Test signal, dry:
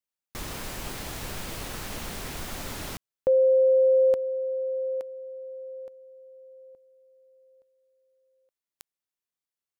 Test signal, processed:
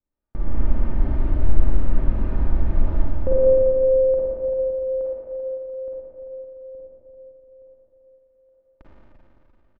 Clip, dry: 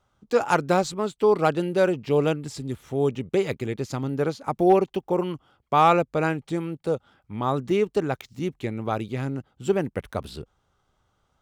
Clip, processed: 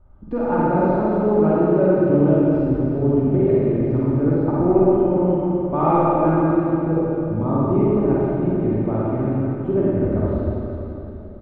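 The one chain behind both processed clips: LPF 1700 Hz 12 dB/oct; tilt -4.5 dB/oct; comb 3.3 ms, depth 45%; compressor 1.5:1, threshold -41 dBFS; Schroeder reverb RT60 3.3 s, DRR -8.5 dB; gain +1.5 dB

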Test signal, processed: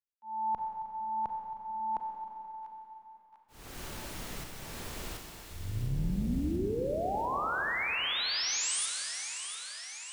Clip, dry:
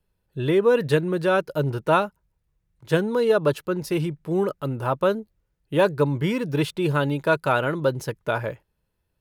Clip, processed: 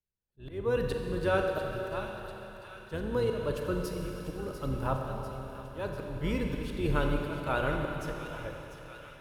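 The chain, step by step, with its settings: octaver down 2 oct, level -1 dB; gate -46 dBFS, range -14 dB; auto swell 0.332 s; on a send: thin delay 0.695 s, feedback 66%, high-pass 1600 Hz, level -10 dB; on the sum: Schroeder reverb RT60 3.7 s, combs from 30 ms, DRR 2 dB; gain -8 dB

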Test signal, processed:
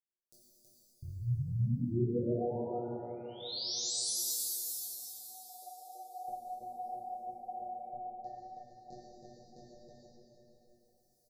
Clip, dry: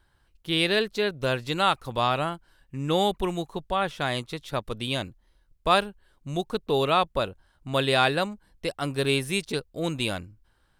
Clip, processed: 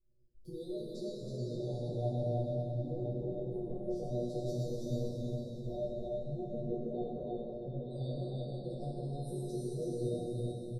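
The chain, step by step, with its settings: recorder AGC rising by 17 dB/s; elliptic band-stop 590–4700 Hz, stop band 40 dB; spectral gate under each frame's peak -25 dB strong; chorus voices 2, 1.4 Hz, delay 19 ms, depth 3 ms; high shelf 4100 Hz -6.5 dB; comb 5.5 ms, depth 41%; compressor 6:1, threshold -31 dBFS; bell 2000 Hz -13.5 dB 0.38 oct; resonator 120 Hz, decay 0.24 s, harmonics all, mix 100%; echo 0.323 s -3 dB; plate-style reverb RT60 3.8 s, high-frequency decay 0.95×, DRR -5.5 dB

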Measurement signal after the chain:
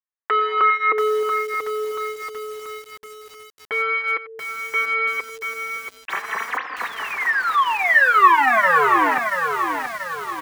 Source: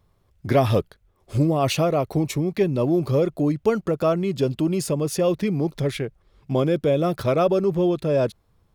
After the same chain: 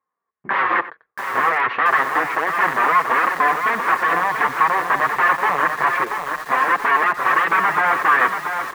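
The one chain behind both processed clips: gate with hold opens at -49 dBFS; in parallel at -3 dB: compressor 10:1, threshold -26 dBFS; on the sum: wrapped overs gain 16 dB; flange 0.3 Hz, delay 3.7 ms, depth 4.5 ms, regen -9%; soft clip -17.5 dBFS; speaker cabinet 470–2100 Hz, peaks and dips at 590 Hz -6 dB, 1100 Hz +10 dB, 1800 Hz +8 dB; on a send: echo 92 ms -15.5 dB; on the sum: lo-fi delay 0.683 s, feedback 55%, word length 7-bit, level -6 dB; gain +6.5 dB

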